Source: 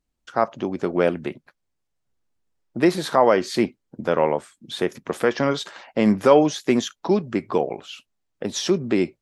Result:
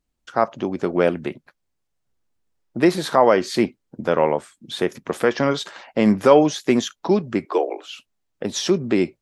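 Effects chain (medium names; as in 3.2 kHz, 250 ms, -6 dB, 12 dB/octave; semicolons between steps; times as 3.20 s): 7.45–7.88 s: steep high-pass 280 Hz 96 dB/octave; trim +1.5 dB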